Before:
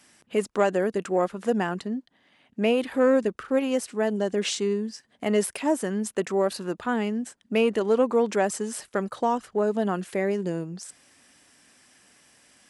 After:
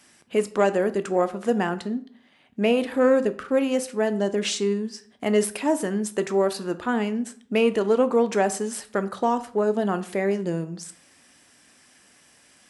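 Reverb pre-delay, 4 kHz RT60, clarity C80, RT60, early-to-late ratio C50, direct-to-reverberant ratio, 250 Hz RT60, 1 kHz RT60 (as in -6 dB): 9 ms, 0.35 s, 20.0 dB, 0.55 s, 16.0 dB, 11.0 dB, 0.55 s, 0.50 s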